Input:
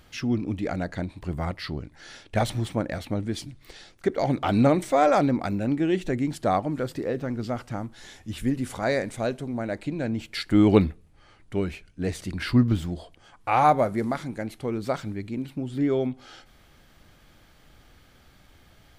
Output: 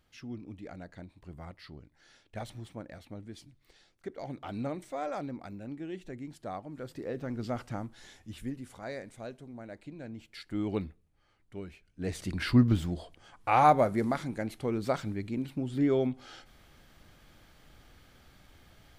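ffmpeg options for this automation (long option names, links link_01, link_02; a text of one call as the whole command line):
ffmpeg -i in.wav -af "volume=8.5dB,afade=type=in:start_time=6.68:duration=0.93:silence=0.251189,afade=type=out:start_time=7.61:duration=1.04:silence=0.281838,afade=type=in:start_time=11.85:duration=0.41:silence=0.237137" out.wav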